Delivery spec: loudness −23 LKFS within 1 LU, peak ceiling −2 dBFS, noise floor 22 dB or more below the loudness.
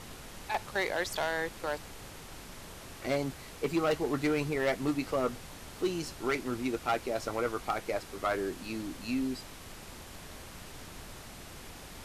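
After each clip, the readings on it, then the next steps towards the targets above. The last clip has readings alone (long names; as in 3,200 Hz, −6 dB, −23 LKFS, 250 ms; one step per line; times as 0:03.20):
share of clipped samples 0.9%; peaks flattened at −23.0 dBFS; background noise floor −48 dBFS; target noise floor −55 dBFS; integrated loudness −33.0 LKFS; sample peak −23.0 dBFS; target loudness −23.0 LKFS
→ clipped peaks rebuilt −23 dBFS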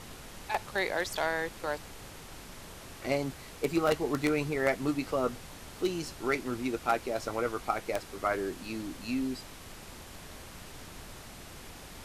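share of clipped samples 0.0%; background noise floor −48 dBFS; target noise floor −55 dBFS
→ noise reduction from a noise print 7 dB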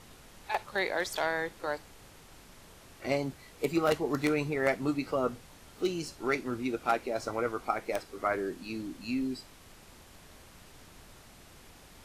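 background noise floor −55 dBFS; integrated loudness −32.5 LKFS; sample peak −14.0 dBFS; target loudness −23.0 LKFS
→ level +9.5 dB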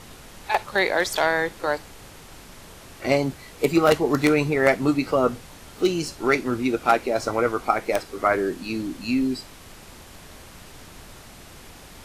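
integrated loudness −23.0 LKFS; sample peak −4.5 dBFS; background noise floor −45 dBFS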